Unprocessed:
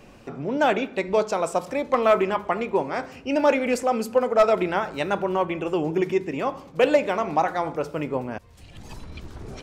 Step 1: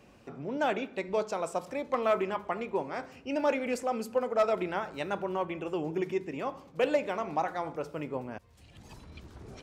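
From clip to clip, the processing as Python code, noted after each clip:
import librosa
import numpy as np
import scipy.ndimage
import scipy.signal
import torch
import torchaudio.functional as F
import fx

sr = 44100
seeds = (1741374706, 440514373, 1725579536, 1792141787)

y = scipy.signal.sosfilt(scipy.signal.butter(2, 43.0, 'highpass', fs=sr, output='sos'), x)
y = y * 10.0 ** (-8.5 / 20.0)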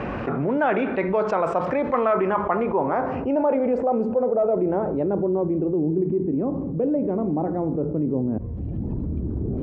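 y = fx.filter_sweep_lowpass(x, sr, from_hz=1600.0, to_hz=300.0, start_s=1.96, end_s=5.86, q=1.3)
y = fx.env_flatten(y, sr, amount_pct=70)
y = y * 10.0 ** (2.5 / 20.0)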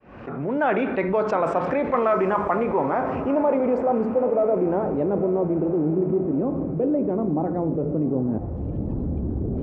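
y = fx.fade_in_head(x, sr, length_s=0.68)
y = fx.echo_diffused(y, sr, ms=915, feedback_pct=48, wet_db=-13.0)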